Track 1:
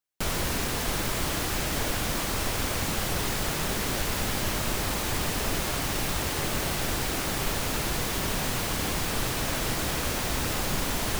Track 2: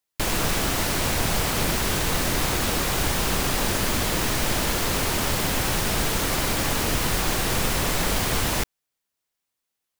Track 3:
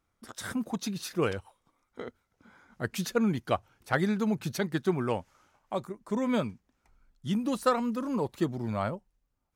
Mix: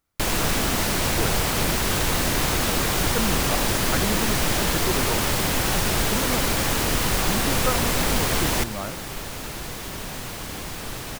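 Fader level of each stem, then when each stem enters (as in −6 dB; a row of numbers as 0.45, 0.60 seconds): −4.5, +1.0, −2.0 decibels; 1.70, 0.00, 0.00 seconds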